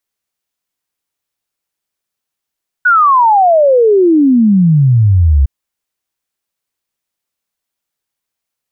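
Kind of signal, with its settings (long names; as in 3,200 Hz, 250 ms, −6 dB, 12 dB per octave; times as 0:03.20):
exponential sine sweep 1,500 Hz → 65 Hz 2.61 s −5 dBFS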